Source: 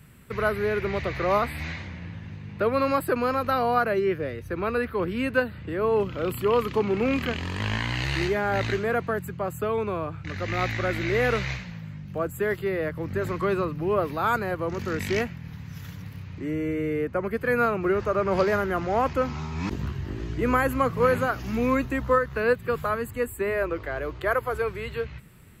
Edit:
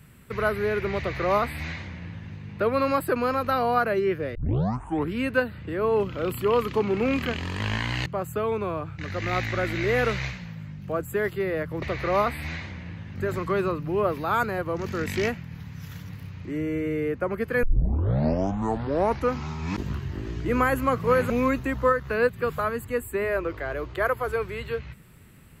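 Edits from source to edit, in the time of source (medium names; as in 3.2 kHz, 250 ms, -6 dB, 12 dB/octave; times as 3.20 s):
0.98–2.31 s: copy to 13.08 s
4.35 s: tape start 0.78 s
8.06–9.32 s: delete
17.56 s: tape start 1.71 s
21.23–21.56 s: delete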